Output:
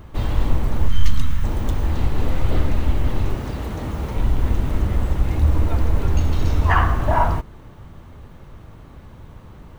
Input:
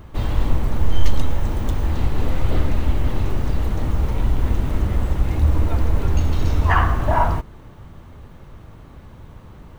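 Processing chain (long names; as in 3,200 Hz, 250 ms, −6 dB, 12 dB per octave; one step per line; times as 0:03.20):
0:00.88–0:01.44: flat-topped bell 520 Hz −16 dB
0:03.34–0:04.16: high-pass filter 110 Hz 6 dB per octave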